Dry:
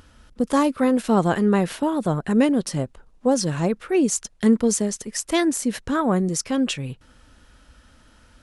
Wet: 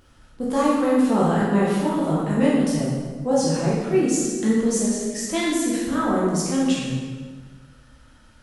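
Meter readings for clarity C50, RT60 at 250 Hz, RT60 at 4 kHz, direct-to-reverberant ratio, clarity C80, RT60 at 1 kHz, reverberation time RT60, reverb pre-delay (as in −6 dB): −1.0 dB, 1.7 s, 1.2 s, −7.0 dB, 1.5 dB, 1.4 s, 1.5 s, 11 ms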